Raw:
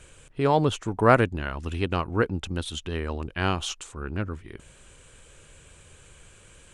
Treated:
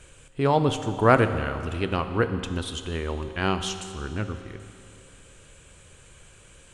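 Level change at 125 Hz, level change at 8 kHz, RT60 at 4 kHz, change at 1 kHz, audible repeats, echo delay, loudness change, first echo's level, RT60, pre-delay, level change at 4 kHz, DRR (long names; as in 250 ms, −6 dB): +0.5 dB, +0.5 dB, 2.5 s, +0.5 dB, no echo audible, no echo audible, +0.5 dB, no echo audible, 2.6 s, 7 ms, +0.5 dB, 8.5 dB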